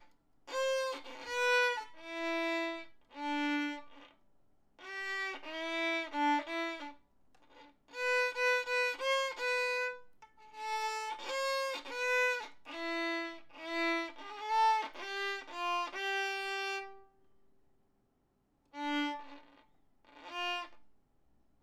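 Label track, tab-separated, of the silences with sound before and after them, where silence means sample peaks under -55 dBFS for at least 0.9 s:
17.040000	18.740000	silence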